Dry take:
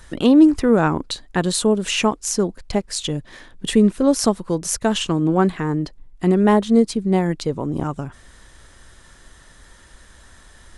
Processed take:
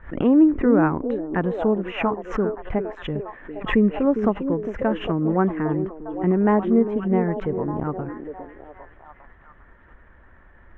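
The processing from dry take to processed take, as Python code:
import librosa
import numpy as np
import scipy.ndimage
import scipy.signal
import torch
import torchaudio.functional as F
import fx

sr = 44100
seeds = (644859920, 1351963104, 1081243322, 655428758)

y = scipy.signal.sosfilt(scipy.signal.cheby2(4, 40, 4200.0, 'lowpass', fs=sr, output='sos'), x)
y = fx.echo_stepped(y, sr, ms=403, hz=340.0, octaves=0.7, feedback_pct=70, wet_db=-5.0)
y = fx.pre_swell(y, sr, db_per_s=140.0)
y = y * 10.0 ** (-3.5 / 20.0)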